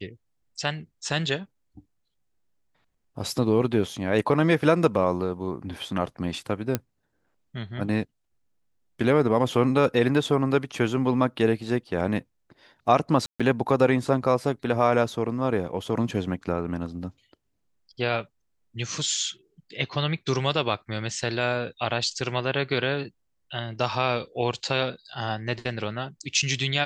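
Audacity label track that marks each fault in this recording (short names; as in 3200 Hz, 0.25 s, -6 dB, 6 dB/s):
6.750000	6.750000	pop -9 dBFS
13.260000	13.400000	gap 0.136 s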